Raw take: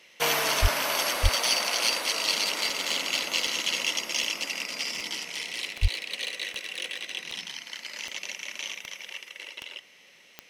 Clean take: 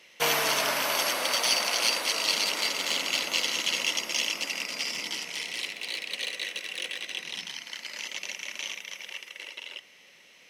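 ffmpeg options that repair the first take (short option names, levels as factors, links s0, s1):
-filter_complex "[0:a]adeclick=t=4,asplit=3[s0][s1][s2];[s0]afade=t=out:st=0.61:d=0.02[s3];[s1]highpass=f=140:w=0.5412,highpass=f=140:w=1.3066,afade=t=in:st=0.61:d=0.02,afade=t=out:st=0.73:d=0.02[s4];[s2]afade=t=in:st=0.73:d=0.02[s5];[s3][s4][s5]amix=inputs=3:normalize=0,asplit=3[s6][s7][s8];[s6]afade=t=out:st=1.22:d=0.02[s9];[s7]highpass=f=140:w=0.5412,highpass=f=140:w=1.3066,afade=t=in:st=1.22:d=0.02,afade=t=out:st=1.34:d=0.02[s10];[s8]afade=t=in:st=1.34:d=0.02[s11];[s9][s10][s11]amix=inputs=3:normalize=0,asplit=3[s12][s13][s14];[s12]afade=t=out:st=5.81:d=0.02[s15];[s13]highpass=f=140:w=0.5412,highpass=f=140:w=1.3066,afade=t=in:st=5.81:d=0.02,afade=t=out:st=5.93:d=0.02[s16];[s14]afade=t=in:st=5.93:d=0.02[s17];[s15][s16][s17]amix=inputs=3:normalize=0"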